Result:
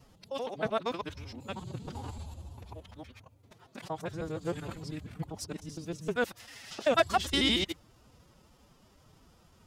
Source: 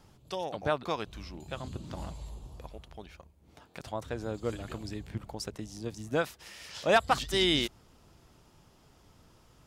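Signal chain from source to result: time reversed locally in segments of 78 ms; formant-preserving pitch shift +6.5 st

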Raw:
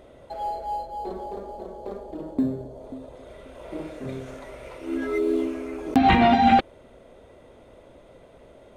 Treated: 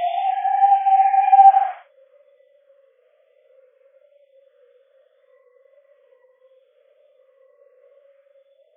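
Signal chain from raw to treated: formants replaced by sine waves; Paulstretch 5.3×, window 0.10 s, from 6.29 s

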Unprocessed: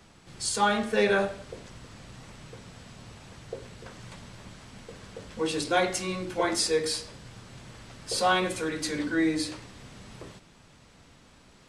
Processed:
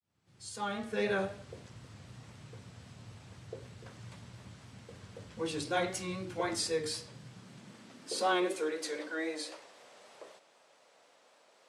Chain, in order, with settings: fade-in on the opening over 1.23 s; vibrato 3.9 Hz 47 cents; high-pass sweep 95 Hz -> 570 Hz, 6.76–9.10 s; trim -7.5 dB

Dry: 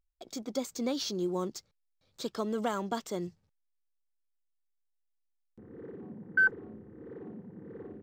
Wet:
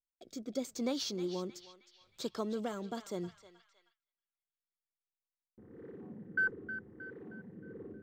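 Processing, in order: rotary cabinet horn 0.8 Hz; band-passed feedback delay 313 ms, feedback 53%, band-pass 2.4 kHz, level -9.5 dB; gate with hold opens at -59 dBFS; trim -2 dB

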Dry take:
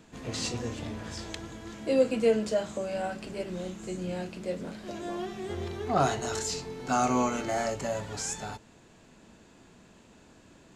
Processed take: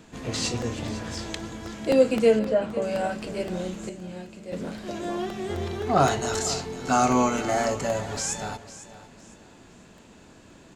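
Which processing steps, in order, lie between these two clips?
2.39–2.82 s: low-pass 2.1 kHz 12 dB/octave; 3.89–4.53 s: feedback comb 230 Hz, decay 0.92 s, mix 70%; feedback delay 503 ms, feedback 30%, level -15.5 dB; crackling interface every 0.26 s, samples 64, repeat, from 0.36 s; trim +5 dB

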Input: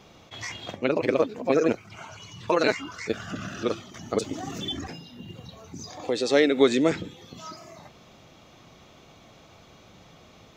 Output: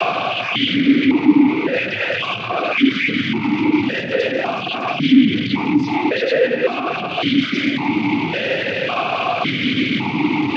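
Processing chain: one-bit comparator; peaking EQ 620 Hz -11 dB 2.1 oct; noise-vocoded speech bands 16; distance through air 280 m; loudness maximiser +32 dB; stepped vowel filter 1.8 Hz; trim +3.5 dB

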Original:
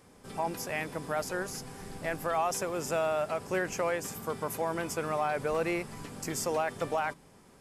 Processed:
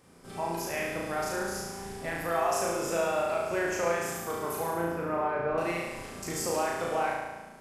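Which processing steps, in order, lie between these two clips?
4.70–5.58 s: low-pass 1.7 kHz 12 dB/octave; on a send: flutter echo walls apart 6.1 m, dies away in 1.2 s; on the sum: trim -2.5 dB

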